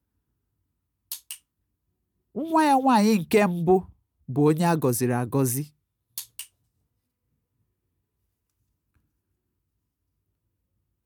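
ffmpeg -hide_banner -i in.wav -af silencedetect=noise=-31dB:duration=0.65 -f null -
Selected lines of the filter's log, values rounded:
silence_start: 0.00
silence_end: 1.12 | silence_duration: 1.12
silence_start: 1.34
silence_end: 2.36 | silence_duration: 1.02
silence_start: 6.42
silence_end: 11.05 | silence_duration: 4.63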